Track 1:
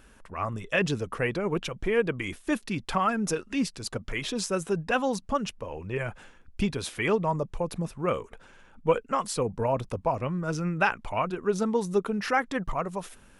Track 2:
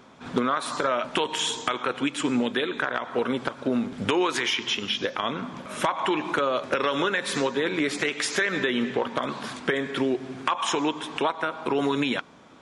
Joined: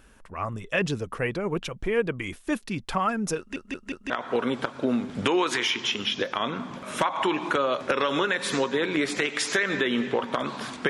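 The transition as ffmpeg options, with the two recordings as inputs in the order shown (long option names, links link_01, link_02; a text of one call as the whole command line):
ffmpeg -i cue0.wav -i cue1.wav -filter_complex "[0:a]apad=whole_dur=10.89,atrim=end=10.89,asplit=4[link_01][link_02][link_03][link_04];[link_01]atrim=end=3.562[link_05];[link_02]atrim=start=3.378:end=3.562[link_06];[link_03]atrim=start=3.378:end=3.562[link_07];[link_04]atrim=start=3.378:end=3.562[link_08];[1:a]atrim=start=2.928:end=9.72[link_09];[link_05][link_06]acrossfade=duration=0.004:curve1=hsin:curve2=hsin[link_10];[link_10][link_07]acrossfade=duration=0.004:curve1=hsin:curve2=hsin[link_11];[link_11][link_08]acrossfade=duration=0.004:curve1=hsin:curve2=hsin[link_12];[link_12][link_09]acrossfade=duration=0.004:curve1=hsin:curve2=hsin" out.wav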